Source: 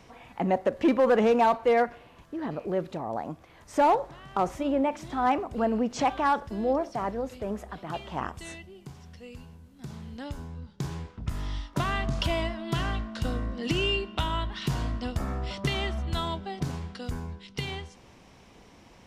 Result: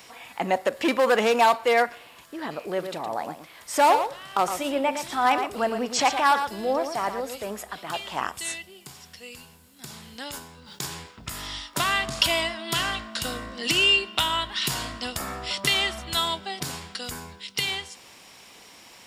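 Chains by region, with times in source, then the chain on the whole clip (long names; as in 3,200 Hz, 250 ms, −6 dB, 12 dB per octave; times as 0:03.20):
0:02.66–0:07.50: notch filter 7,000 Hz, Q 20 + single-tap delay 114 ms −8.5 dB
0:10.23–0:10.86: low-shelf EQ 140 Hz −6 dB + level that may fall only so fast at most 54 dB per second
whole clip: spectral tilt +4 dB per octave; notch filter 6,100 Hz, Q 11; level +4.5 dB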